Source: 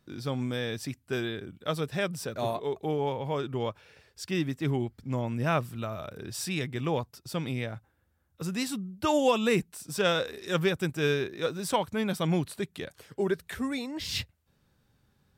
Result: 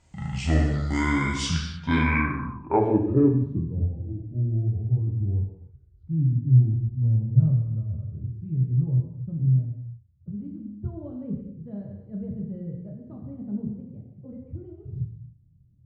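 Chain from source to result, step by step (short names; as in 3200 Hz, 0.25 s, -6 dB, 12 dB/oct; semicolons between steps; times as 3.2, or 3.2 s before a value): speed glide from 54% -> 140%; non-linear reverb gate 0.34 s falling, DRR -1 dB; low-pass sweep 7500 Hz -> 110 Hz, 1.42–3.9; gain +5 dB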